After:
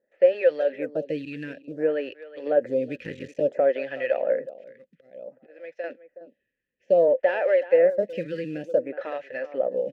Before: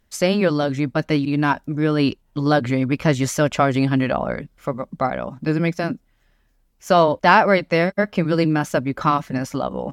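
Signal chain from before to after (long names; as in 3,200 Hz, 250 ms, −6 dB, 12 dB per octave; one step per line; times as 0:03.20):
0:02.95–0:03.42: sub-harmonics by changed cycles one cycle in 3, muted
de-essing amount 95%
low-pass that shuts in the quiet parts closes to 2,500 Hz, open at −19 dBFS
0:04.55–0:05.84: volume swells 771 ms
in parallel at −8.5 dB: floating-point word with a short mantissa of 2 bits
on the sum: formant filter e
far-end echo of a speakerphone 370 ms, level −14 dB
phaser with staggered stages 0.57 Hz
level +6 dB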